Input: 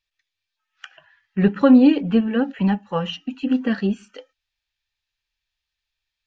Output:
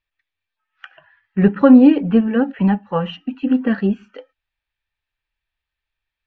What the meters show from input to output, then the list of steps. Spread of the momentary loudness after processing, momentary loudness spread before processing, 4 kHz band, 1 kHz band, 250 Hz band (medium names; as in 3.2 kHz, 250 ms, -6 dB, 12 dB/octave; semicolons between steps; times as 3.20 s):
16 LU, 15 LU, -3.0 dB, +3.5 dB, +3.5 dB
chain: low-pass 2.2 kHz 12 dB/octave; trim +3.5 dB